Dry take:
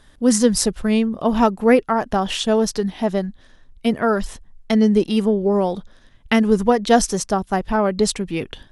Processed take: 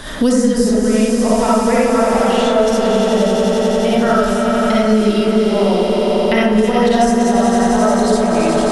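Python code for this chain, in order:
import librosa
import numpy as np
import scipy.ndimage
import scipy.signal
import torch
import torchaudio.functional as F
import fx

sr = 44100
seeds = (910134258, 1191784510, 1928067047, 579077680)

p1 = x + fx.echo_swell(x, sr, ms=89, loudest=5, wet_db=-10.5, dry=0)
p2 = fx.rev_freeverb(p1, sr, rt60_s=0.98, hf_ratio=0.35, predelay_ms=20, drr_db=-8.0)
p3 = fx.band_squash(p2, sr, depth_pct=100)
y = F.gain(torch.from_numpy(p3), -7.5).numpy()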